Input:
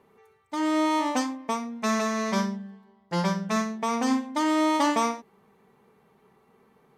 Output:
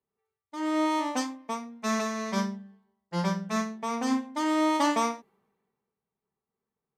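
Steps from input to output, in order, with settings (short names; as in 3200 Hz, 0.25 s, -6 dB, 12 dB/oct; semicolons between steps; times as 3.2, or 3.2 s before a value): three-band expander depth 70%; gain -3 dB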